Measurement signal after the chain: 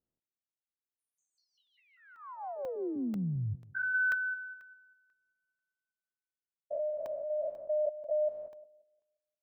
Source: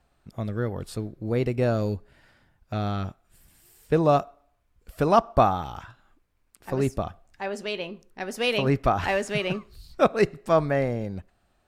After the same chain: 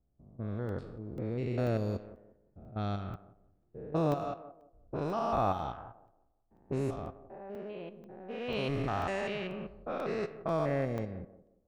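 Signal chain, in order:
spectrum averaged block by block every 200 ms
feedback echo with a high-pass in the loop 177 ms, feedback 42%, high-pass 240 Hz, level −13 dB
low-pass that shuts in the quiet parts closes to 370 Hz, open at −21.5 dBFS
regular buffer underruns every 0.49 s, samples 64, zero, from 0:00.69
level −6 dB

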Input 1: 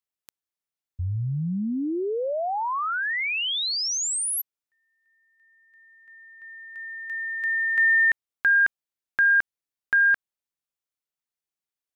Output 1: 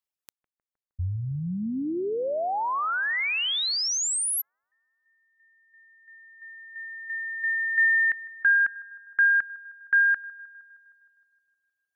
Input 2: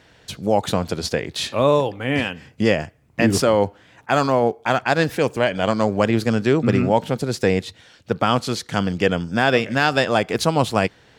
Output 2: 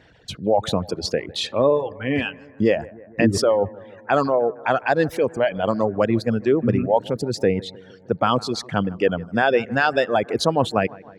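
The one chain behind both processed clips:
spectral envelope exaggerated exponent 1.5
reverb reduction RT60 1.1 s
on a send: bucket-brigade delay 155 ms, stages 2,048, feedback 64%, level −21.5 dB

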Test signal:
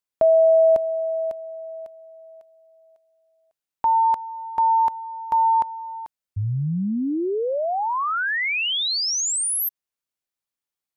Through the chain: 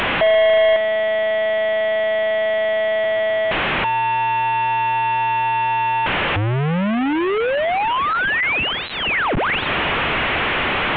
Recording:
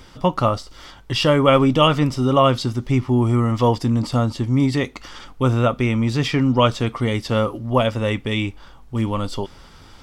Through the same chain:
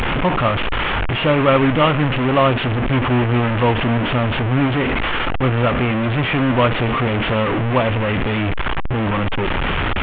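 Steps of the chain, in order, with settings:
linear delta modulator 16 kbit/s, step −12.5 dBFS

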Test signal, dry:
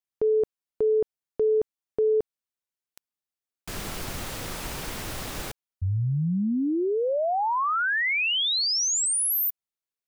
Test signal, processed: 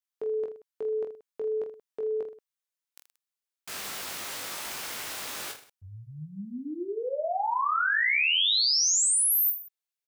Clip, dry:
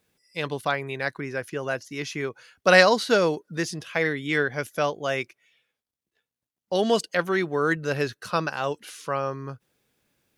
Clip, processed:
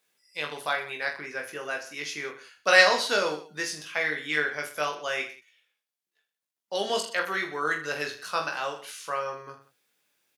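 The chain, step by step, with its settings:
high-pass filter 1,100 Hz 6 dB per octave
on a send: reverse bouncing-ball delay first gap 20 ms, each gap 1.3×, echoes 5
on the sum: level −1 dB

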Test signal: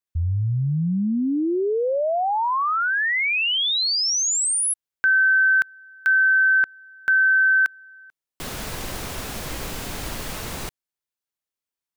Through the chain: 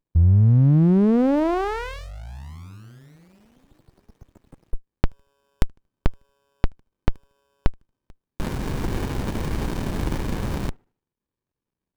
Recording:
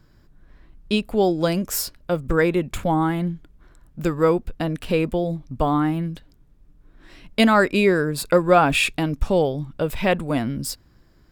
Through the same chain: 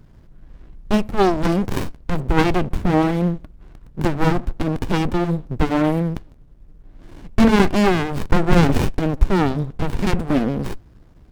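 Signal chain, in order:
delay with a band-pass on its return 77 ms, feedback 33%, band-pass 510 Hz, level −22.5 dB
windowed peak hold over 65 samples
level +8.5 dB

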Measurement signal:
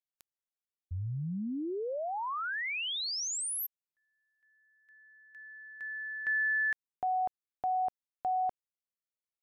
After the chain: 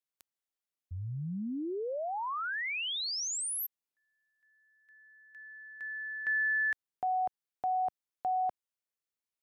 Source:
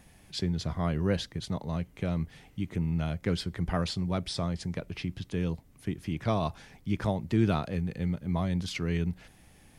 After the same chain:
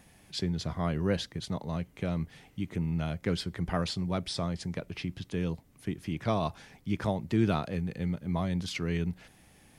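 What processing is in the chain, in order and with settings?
low-shelf EQ 64 Hz −9 dB

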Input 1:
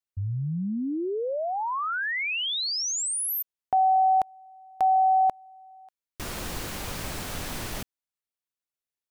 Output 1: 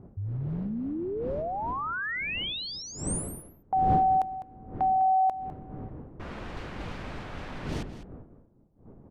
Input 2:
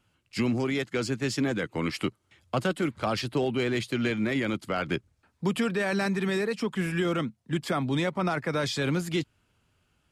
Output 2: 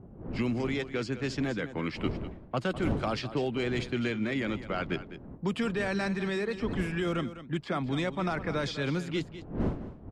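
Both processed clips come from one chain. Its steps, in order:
wind on the microphone 270 Hz −37 dBFS
low-pass that shuts in the quiet parts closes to 860 Hz, open at −20.5 dBFS
single-tap delay 203 ms −13 dB
level −3.5 dB

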